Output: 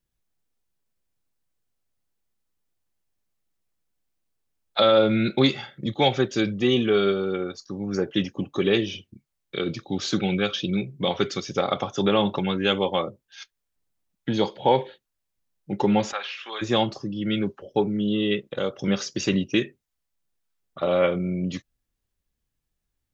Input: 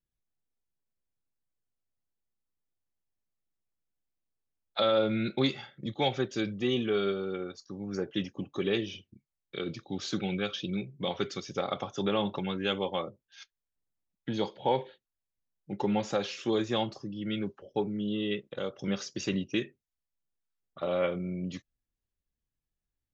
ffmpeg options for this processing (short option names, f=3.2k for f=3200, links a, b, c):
-filter_complex "[0:a]asplit=3[a][b][c];[a]afade=t=out:st=16.11:d=0.02[d];[b]asuperpass=centerf=1800:order=4:qfactor=0.79,afade=t=in:st=16.11:d=0.02,afade=t=out:st=16.61:d=0.02[e];[c]afade=t=in:st=16.61:d=0.02[f];[d][e][f]amix=inputs=3:normalize=0,volume=8dB"